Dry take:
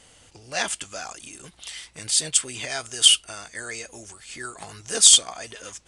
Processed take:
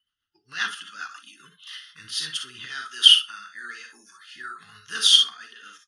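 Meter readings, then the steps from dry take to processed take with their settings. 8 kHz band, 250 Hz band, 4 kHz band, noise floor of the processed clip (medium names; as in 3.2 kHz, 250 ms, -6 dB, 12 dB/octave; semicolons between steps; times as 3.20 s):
-13.5 dB, under -10 dB, +3.0 dB, -81 dBFS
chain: band-stop 490 Hz, Q 12; feedback delay 63 ms, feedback 26%, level -18 dB; spectral noise reduction 28 dB; high-order bell 1.9 kHz +13.5 dB; static phaser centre 2.3 kHz, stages 6; gated-style reverb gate 80 ms rising, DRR 4 dB; rotary cabinet horn 7.5 Hz, later 1 Hz, at 1.45 s; treble shelf 4 kHz +8.5 dB; trim -8.5 dB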